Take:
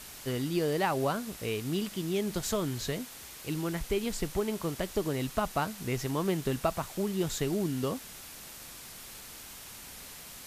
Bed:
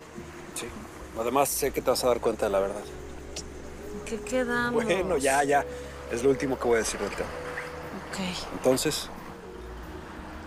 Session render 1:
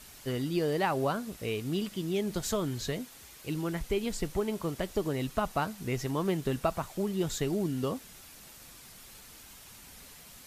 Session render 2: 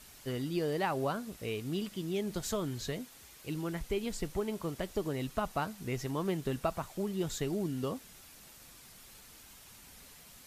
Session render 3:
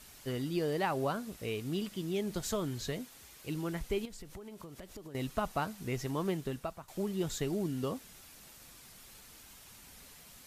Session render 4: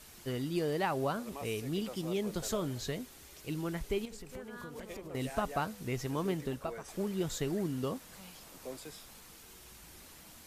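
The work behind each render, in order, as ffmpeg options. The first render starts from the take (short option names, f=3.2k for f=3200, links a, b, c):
-af "afftdn=nr=6:nf=-47"
-af "volume=-3.5dB"
-filter_complex "[0:a]asettb=1/sr,asplit=3[a][b][c];[a]atrim=end=4.054[d];[b]atrim=start=4.05:end=5.15,asetpts=PTS-STARTPTS,afade=t=in:d=0.004:c=qsin,afade=t=out:st=1.096:d=0.004:c=qsin,acompressor=threshold=-43dB:ratio=12:attack=3.2:release=140:knee=1:detection=peak[e];[c]atrim=start=5.146[f];[d][e]acrossfade=d=0.004:c1=hsin:c2=qsin[g];[g][f]acrossfade=d=0.004:c1=qsin:c2=hsin,asplit=2[h][i];[h]atrim=end=6.88,asetpts=PTS-STARTPTS,afade=t=out:st=6.27:d=0.61:silence=0.177828[j];[i]atrim=start=6.88,asetpts=PTS-STARTPTS,afade=t=in:d=0.004:c=hsin:silence=0.177828[k];[j][k]concat=n=2:v=0:a=1"
-filter_complex "[1:a]volume=-21.5dB[a];[0:a][a]amix=inputs=2:normalize=0"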